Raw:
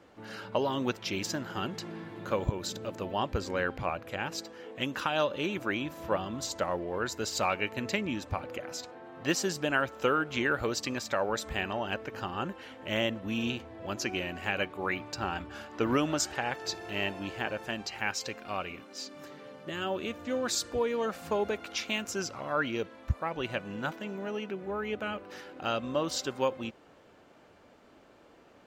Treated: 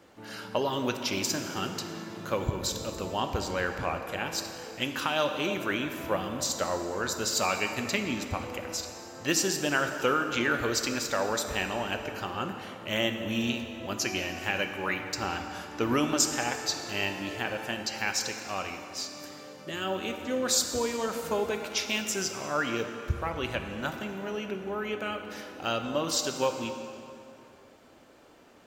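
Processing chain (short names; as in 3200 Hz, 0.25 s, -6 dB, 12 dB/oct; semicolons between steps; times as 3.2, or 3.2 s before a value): high shelf 4900 Hz +10 dB; plate-style reverb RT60 2.8 s, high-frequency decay 0.7×, DRR 5.5 dB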